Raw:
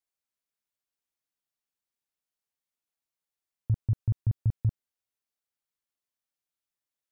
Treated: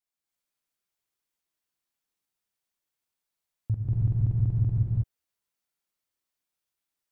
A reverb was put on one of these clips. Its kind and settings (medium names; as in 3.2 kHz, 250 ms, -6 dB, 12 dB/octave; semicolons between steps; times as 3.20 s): gated-style reverb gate 350 ms rising, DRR -5 dB; trim -2 dB